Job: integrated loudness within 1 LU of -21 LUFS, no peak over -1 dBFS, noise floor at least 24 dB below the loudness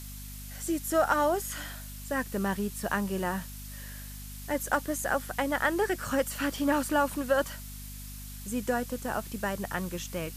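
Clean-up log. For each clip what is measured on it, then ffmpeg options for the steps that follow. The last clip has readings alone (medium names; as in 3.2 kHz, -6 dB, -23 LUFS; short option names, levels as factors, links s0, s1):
hum 50 Hz; highest harmonic 250 Hz; hum level -40 dBFS; noise floor -42 dBFS; noise floor target -54 dBFS; loudness -30.0 LUFS; peak level -11.5 dBFS; loudness target -21.0 LUFS
-> -af "bandreject=f=50:t=h:w=4,bandreject=f=100:t=h:w=4,bandreject=f=150:t=h:w=4,bandreject=f=200:t=h:w=4,bandreject=f=250:t=h:w=4"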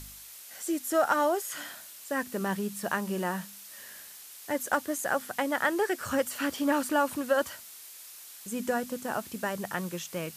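hum not found; noise floor -48 dBFS; noise floor target -55 dBFS
-> -af "afftdn=nr=7:nf=-48"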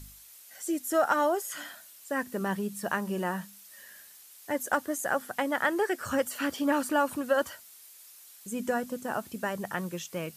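noise floor -53 dBFS; noise floor target -55 dBFS
-> -af "afftdn=nr=6:nf=-53"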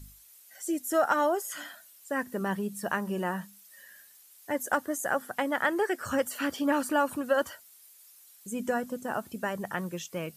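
noise floor -56 dBFS; loudness -30.5 LUFS; peak level -12.0 dBFS; loudness target -21.0 LUFS
-> -af "volume=2.99"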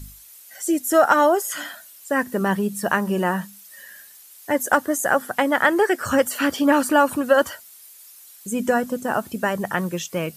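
loudness -21.0 LUFS; peak level -2.5 dBFS; noise floor -46 dBFS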